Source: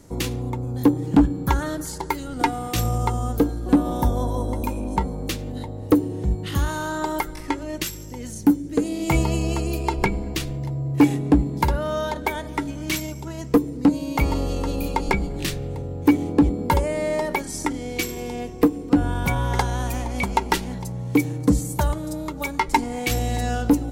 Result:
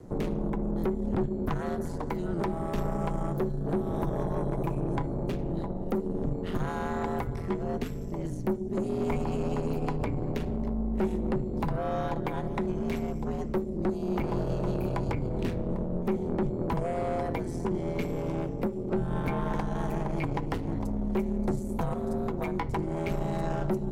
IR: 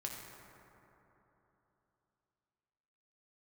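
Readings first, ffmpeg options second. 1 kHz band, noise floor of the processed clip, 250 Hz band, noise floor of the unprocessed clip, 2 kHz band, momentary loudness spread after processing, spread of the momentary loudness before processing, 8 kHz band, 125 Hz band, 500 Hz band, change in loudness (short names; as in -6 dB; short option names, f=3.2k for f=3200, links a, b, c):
-9.0 dB, -35 dBFS, -8.5 dB, -34 dBFS, -12.5 dB, 3 LU, 9 LU, under -20 dB, -6.0 dB, -3.5 dB, -7.5 dB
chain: -filter_complex "[0:a]tiltshelf=f=1.4k:g=8.5,acrossover=split=250|2800[a][b][c];[a]acompressor=threshold=-23dB:ratio=4[d];[b]acompressor=threshold=-23dB:ratio=4[e];[c]acompressor=threshold=-44dB:ratio=4[f];[d][e][f]amix=inputs=3:normalize=0,aeval=exprs='val(0)*sin(2*PI*85*n/s)':c=same,acrossover=split=380|1700[g][h][i];[i]acrusher=bits=6:mode=log:mix=0:aa=0.000001[j];[g][h][j]amix=inputs=3:normalize=0,aeval=exprs='(tanh(12.6*val(0)+0.35)-tanh(0.35))/12.6':c=same,asplit=2[k][l];[1:a]atrim=start_sample=2205,atrim=end_sample=3528,lowpass=5.1k[m];[l][m]afir=irnorm=-1:irlink=0,volume=-6.5dB[n];[k][n]amix=inputs=2:normalize=0,volume=-3dB"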